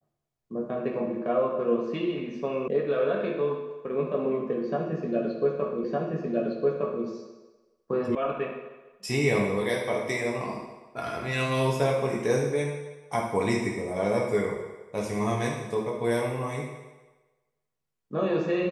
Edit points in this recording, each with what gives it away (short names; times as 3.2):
2.68 sound cut off
5.84 repeat of the last 1.21 s
8.15 sound cut off